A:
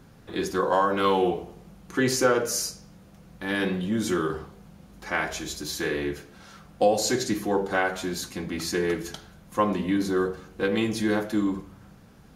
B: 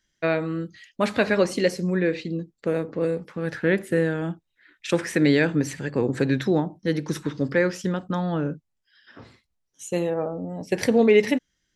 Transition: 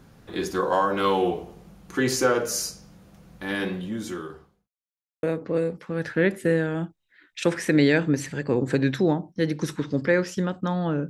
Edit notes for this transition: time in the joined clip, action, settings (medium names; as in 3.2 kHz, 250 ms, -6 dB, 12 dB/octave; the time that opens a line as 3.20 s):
A
3.40–4.68 s: fade out linear
4.68–5.23 s: mute
5.23 s: go over to B from 2.70 s